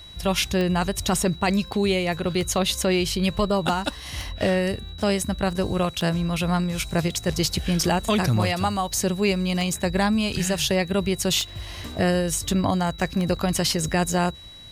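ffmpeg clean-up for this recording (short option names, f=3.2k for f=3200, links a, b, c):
-af "adeclick=t=4,bandreject=f=3.9k:w=30"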